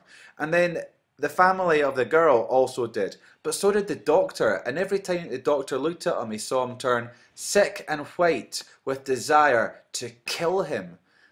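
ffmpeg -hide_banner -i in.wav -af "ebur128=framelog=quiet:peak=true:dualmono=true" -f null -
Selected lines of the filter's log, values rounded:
Integrated loudness:
  I:         -21.4 LUFS
  Threshold: -31.7 LUFS
Loudness range:
  LRA:         3.4 LU
  Threshold: -41.7 LUFS
  LRA low:   -23.5 LUFS
  LRA high:  -20.0 LUFS
True peak:
  Peak:       -4.8 dBFS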